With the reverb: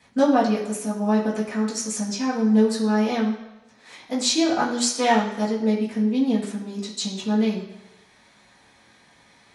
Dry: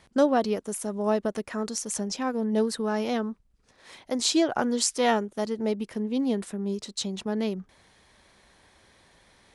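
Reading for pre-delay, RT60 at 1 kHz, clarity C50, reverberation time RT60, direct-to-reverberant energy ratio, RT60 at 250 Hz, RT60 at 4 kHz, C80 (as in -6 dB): 3 ms, 1.0 s, 6.0 dB, 1.0 s, -9.5 dB, 0.90 s, 0.95 s, 8.5 dB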